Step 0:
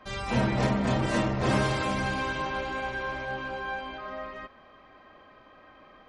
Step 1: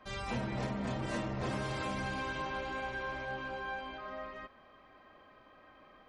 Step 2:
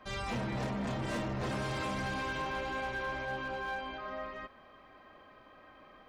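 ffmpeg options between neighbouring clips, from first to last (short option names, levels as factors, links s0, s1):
-af "acompressor=threshold=0.0447:ratio=6,volume=0.531"
-af "asoftclip=type=hard:threshold=0.0211,volume=1.33"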